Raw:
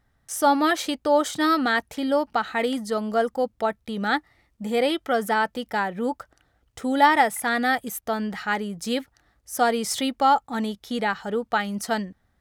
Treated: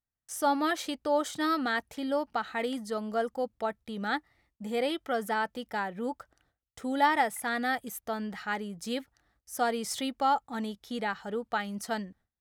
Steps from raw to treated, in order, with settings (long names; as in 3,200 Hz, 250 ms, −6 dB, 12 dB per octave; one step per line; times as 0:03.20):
noise gate with hold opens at −52 dBFS
level −7.5 dB